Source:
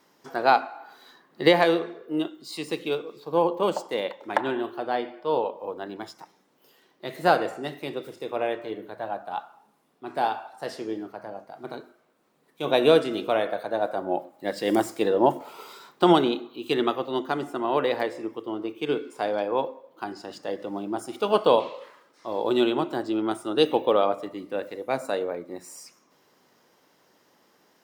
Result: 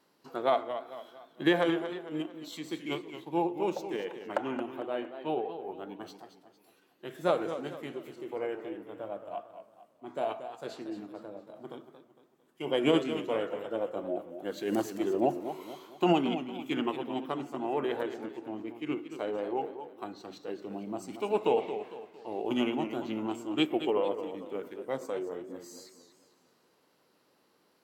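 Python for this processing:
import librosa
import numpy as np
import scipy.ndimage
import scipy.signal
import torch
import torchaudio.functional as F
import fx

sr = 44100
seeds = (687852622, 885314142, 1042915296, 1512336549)

y = fx.formant_shift(x, sr, semitones=-3)
y = fx.echo_warbled(y, sr, ms=227, feedback_pct=41, rate_hz=2.8, cents=134, wet_db=-10.5)
y = y * 10.0 ** (-7.0 / 20.0)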